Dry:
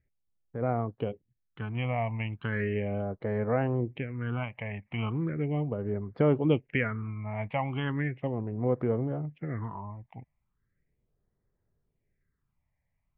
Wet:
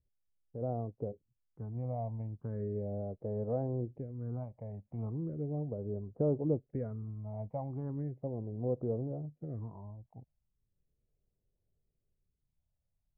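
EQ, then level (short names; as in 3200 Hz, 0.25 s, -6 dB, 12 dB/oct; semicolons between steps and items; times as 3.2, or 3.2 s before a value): ladder low-pass 760 Hz, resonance 35%; low shelf 120 Hz +8.5 dB; -2.5 dB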